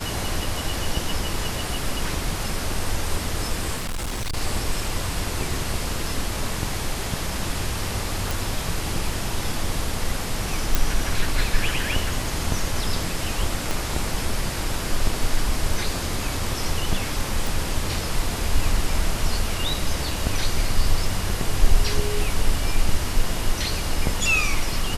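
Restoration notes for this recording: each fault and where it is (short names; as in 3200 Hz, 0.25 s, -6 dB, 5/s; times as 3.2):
3.76–4.37 clipped -24 dBFS
8.31 pop
10.75 pop
13.71 pop
17.47 pop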